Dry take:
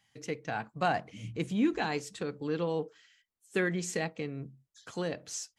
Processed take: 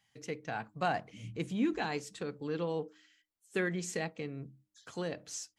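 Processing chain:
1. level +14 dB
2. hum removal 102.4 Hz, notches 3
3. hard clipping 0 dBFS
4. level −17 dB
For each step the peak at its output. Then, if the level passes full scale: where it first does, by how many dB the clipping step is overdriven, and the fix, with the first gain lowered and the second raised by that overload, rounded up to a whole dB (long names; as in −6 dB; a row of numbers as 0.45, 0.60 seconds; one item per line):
−2.0, −2.0, −2.0, −19.0 dBFS
no step passes full scale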